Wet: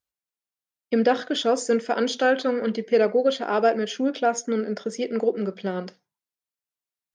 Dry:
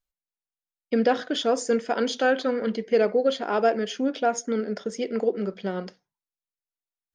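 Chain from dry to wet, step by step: high-pass 78 Hz; trim +1.5 dB

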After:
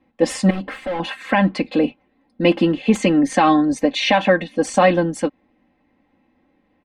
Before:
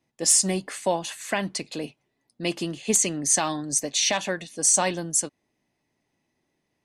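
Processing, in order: 0.50–1.00 s: hard clipper -37 dBFS, distortion -12 dB; distance through air 480 m; comb 3.8 ms, depth 87%; loudness maximiser +16 dB; trim -3 dB

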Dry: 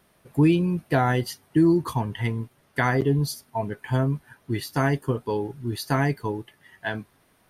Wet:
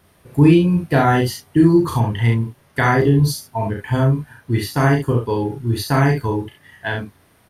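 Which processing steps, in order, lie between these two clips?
peaking EQ 84 Hz +9.5 dB 0.66 oct; on a send: loudspeakers at several distances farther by 12 m -3 dB, 23 m -5 dB; on the sum: trim +4 dB

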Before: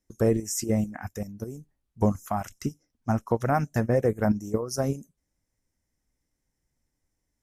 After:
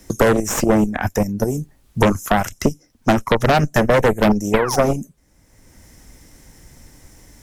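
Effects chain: painted sound fall, 4.53–4.84 s, 490–2600 Hz -41 dBFS; Chebyshev shaper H 5 -8 dB, 6 -6 dB, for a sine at -11.5 dBFS; three bands compressed up and down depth 70%; trim +3 dB

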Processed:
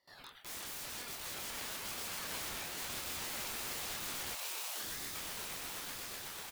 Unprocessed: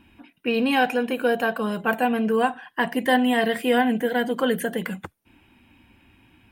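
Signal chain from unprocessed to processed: gate with hold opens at -46 dBFS; amplifier tone stack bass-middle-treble 10-0-10; echo from a far wall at 19 m, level -7 dB; compression 2:1, threshold -55 dBFS, peak gain reduction 16.5 dB; integer overflow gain 47 dB; doubling 26 ms -5.5 dB; echo with a slow build-up 123 ms, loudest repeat 8, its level -9 dB; time-frequency box 4.35–5.15 s, 360–1500 Hz -23 dB; ring modulator with a swept carrier 1.3 kHz, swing 50%, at 0.99 Hz; trim +9 dB

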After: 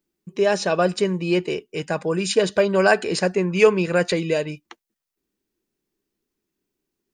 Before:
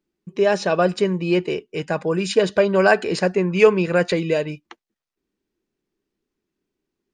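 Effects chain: treble shelf 6.9 kHz +12 dB; trim -1.5 dB

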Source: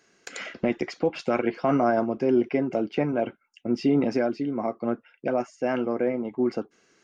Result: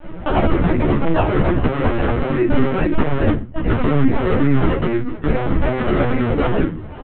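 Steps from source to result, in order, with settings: high-order bell 770 Hz -15.5 dB 2.6 oct; band-stop 680 Hz, Q 13; compression 16:1, threshold -35 dBFS, peak gain reduction 13.5 dB; comb of notches 220 Hz; decimation with a swept rate 38×, swing 100% 2.4 Hz; saturation -38 dBFS, distortion -13 dB; distance through air 380 m; reverberation RT60 0.25 s, pre-delay 3 ms, DRR -4 dB; LPC vocoder at 8 kHz pitch kept; loudness maximiser +34 dB; endless flanger 11.8 ms -2 Hz; trim -3 dB

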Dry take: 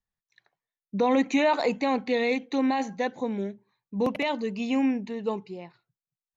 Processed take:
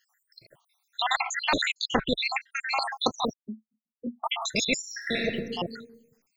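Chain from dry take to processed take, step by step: random holes in the spectrogram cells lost 80%; 1.16–2.79 s: tilt EQ -4.5 dB/octave; 3.33–4.24 s: Butterworth band-pass 230 Hz, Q 7; 4.80–5.24 s: reverb throw, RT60 0.92 s, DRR -3 dB; spectrum-flattening compressor 4:1; trim +3.5 dB

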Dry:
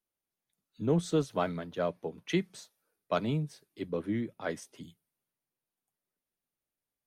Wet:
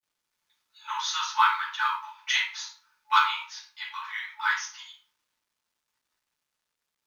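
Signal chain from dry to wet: FFT band-pass 860–6800 Hz; simulated room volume 400 m³, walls furnished, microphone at 7.4 m; companded quantiser 8-bit; trim +5 dB

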